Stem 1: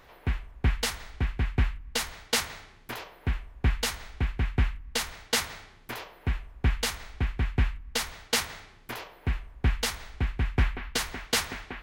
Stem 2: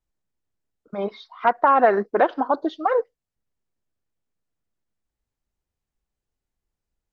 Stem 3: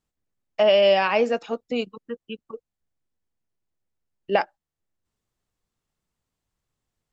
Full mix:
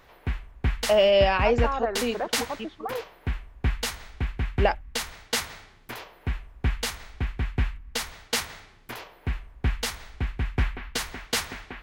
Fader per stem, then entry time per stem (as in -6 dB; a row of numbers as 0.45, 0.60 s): -0.5, -12.5, -2.0 dB; 0.00, 0.00, 0.30 s